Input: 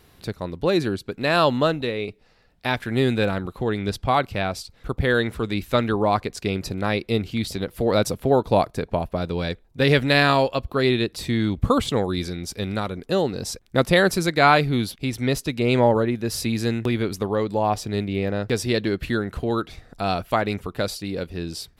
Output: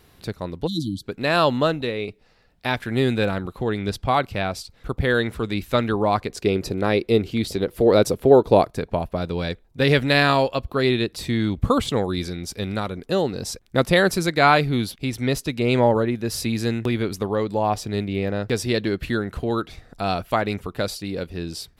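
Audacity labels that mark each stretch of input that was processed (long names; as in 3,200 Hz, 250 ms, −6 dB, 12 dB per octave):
0.670000	1.030000	time-frequency box erased 330–3,000 Hz
6.290000	8.650000	parametric band 400 Hz +7.5 dB 0.99 octaves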